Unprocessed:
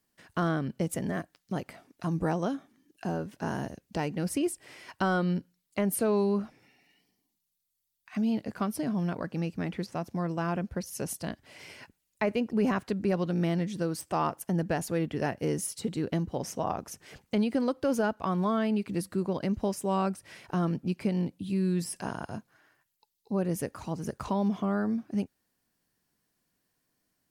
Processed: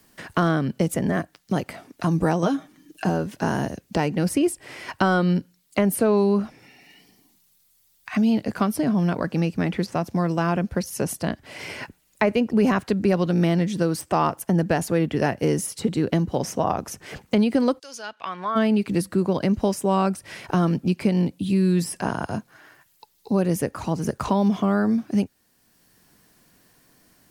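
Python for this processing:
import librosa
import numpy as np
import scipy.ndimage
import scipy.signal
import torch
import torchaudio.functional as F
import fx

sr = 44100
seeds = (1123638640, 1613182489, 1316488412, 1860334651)

y = fx.comb(x, sr, ms=6.4, depth=0.61, at=(2.42, 3.09))
y = fx.bandpass_q(y, sr, hz=fx.line((17.78, 7600.0), (18.55, 1400.0)), q=1.8, at=(17.78, 18.55), fade=0.02)
y = fx.band_squash(y, sr, depth_pct=40)
y = F.gain(torch.from_numpy(y), 8.0).numpy()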